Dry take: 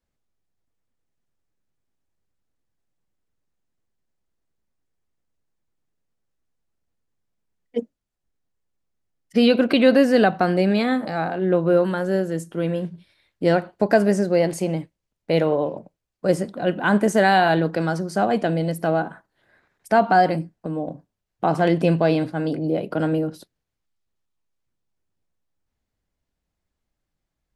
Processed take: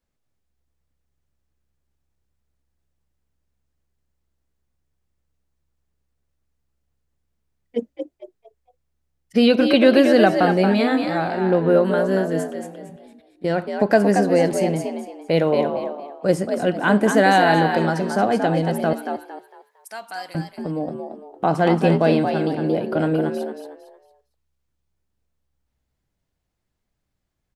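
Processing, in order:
0:12.53–0:13.59: output level in coarse steps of 21 dB
0:18.93–0:20.35: first difference
echo with shifted repeats 228 ms, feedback 31%, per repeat +67 Hz, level −6 dB
level +1 dB

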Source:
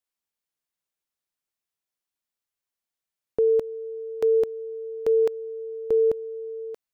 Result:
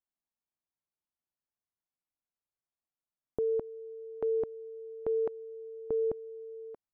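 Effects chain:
low-pass filter 1,000 Hz 12 dB per octave
parametric band 470 Hz −8.5 dB 0.46 octaves
level −2 dB

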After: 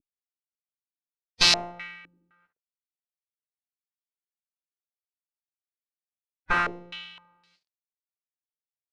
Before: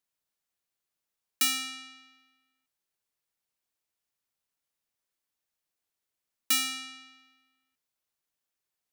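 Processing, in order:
variable-slope delta modulation 64 kbit/s
harmonic generator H 5 −28 dB, 6 −7 dB, 7 −27 dB, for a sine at −18 dBFS
phase-vocoder pitch shift with formants kept −7 semitones
low-pass on a step sequencer 3.9 Hz 310–4,600 Hz
level +4 dB

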